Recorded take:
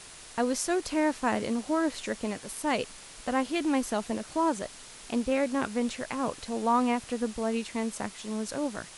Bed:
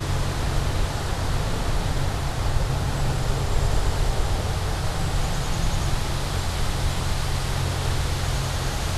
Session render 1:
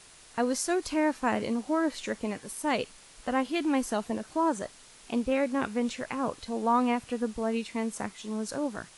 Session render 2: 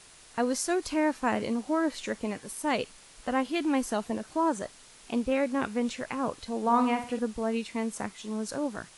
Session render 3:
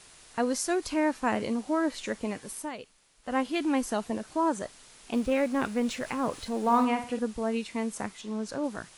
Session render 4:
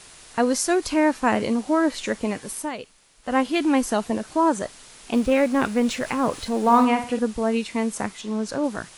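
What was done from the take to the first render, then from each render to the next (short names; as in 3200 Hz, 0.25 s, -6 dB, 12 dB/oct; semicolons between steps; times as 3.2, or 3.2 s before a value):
noise print and reduce 6 dB
6.61–7.19 flutter echo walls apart 9.5 m, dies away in 0.41 s
2.58–3.36 dip -12 dB, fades 0.13 s; 5.13–6.85 G.711 law mismatch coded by mu; 8.21–8.64 air absorption 54 m
gain +7 dB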